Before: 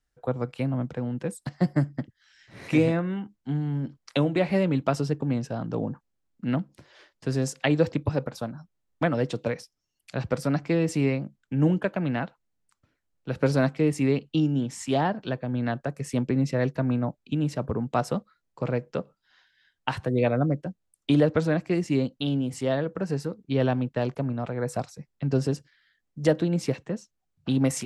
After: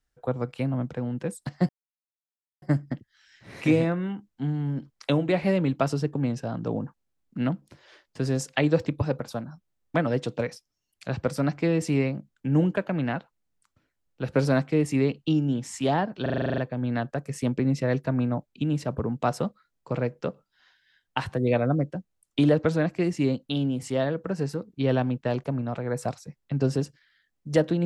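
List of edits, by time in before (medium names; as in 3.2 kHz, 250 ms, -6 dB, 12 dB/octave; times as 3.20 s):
1.69 s: insert silence 0.93 s
15.29 s: stutter 0.04 s, 10 plays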